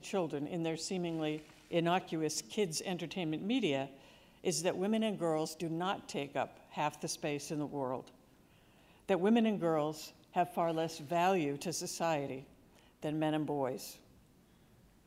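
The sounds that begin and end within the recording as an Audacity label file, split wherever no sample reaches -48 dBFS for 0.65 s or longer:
9.090000	13.960000	sound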